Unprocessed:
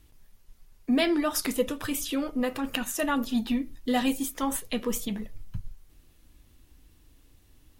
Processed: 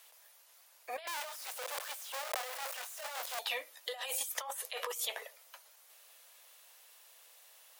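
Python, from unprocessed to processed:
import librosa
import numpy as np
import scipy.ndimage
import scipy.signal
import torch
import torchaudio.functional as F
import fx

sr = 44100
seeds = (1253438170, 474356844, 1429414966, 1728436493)

y = fx.clip_1bit(x, sr, at=(1.07, 3.39))
y = scipy.signal.sosfilt(scipy.signal.butter(8, 530.0, 'highpass', fs=sr, output='sos'), y)
y = fx.high_shelf(y, sr, hz=6300.0, db=3.5)
y = fx.over_compress(y, sr, threshold_db=-40.0, ratio=-1.0)
y = y * 10.0 ** (-1.5 / 20.0)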